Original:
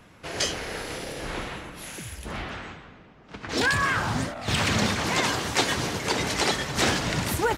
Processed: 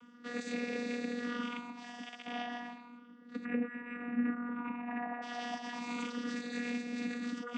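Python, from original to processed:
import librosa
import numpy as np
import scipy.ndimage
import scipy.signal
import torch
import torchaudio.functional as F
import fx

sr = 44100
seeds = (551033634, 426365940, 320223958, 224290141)

p1 = fx.rattle_buzz(x, sr, strikes_db=-36.0, level_db=-19.0)
p2 = np.where(np.abs(p1) >= 10.0 ** (-35.0 / 20.0), p1, 0.0)
p3 = p1 + (p2 * 10.0 ** (-10.0 / 20.0))
p4 = fx.hum_notches(p3, sr, base_hz=50, count=3)
p5 = 10.0 ** (-13.0 / 20.0) * np.tanh(p4 / 10.0 ** (-13.0 / 20.0))
p6 = fx.steep_lowpass(p5, sr, hz=2200.0, slope=96, at=(3.43, 5.21), fade=0.02)
p7 = fx.over_compress(p6, sr, threshold_db=-29.0, ratio=-1.0)
p8 = fx.phaser_stages(p7, sr, stages=12, low_hz=380.0, high_hz=1100.0, hz=0.33, feedback_pct=45)
p9 = fx.vocoder(p8, sr, bands=16, carrier='saw', carrier_hz=241.0)
y = p9 * 10.0 ** (-5.0 / 20.0)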